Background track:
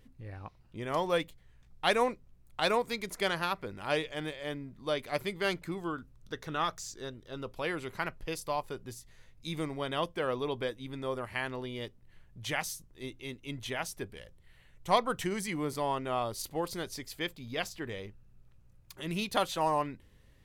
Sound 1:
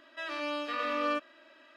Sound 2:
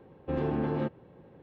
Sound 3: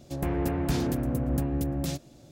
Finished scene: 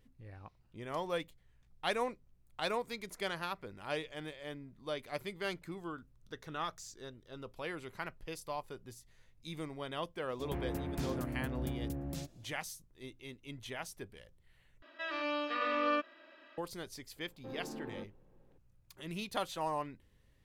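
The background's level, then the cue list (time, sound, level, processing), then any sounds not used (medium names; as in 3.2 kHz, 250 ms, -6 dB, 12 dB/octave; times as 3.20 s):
background track -7 dB
10.29 s: add 3 -10.5 dB
14.82 s: replace with 1 -1 dB + low-pass 4.4 kHz
17.16 s: add 2 -14 dB + Chebyshev high-pass 160 Hz, order 6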